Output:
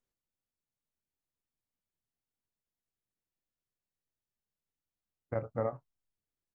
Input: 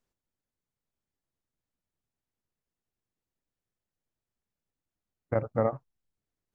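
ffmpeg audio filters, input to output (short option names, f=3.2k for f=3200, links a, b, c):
-filter_complex "[0:a]asplit=2[a][b];[b]adelay=25,volume=-12dB[c];[a][c]amix=inputs=2:normalize=0,volume=-7dB"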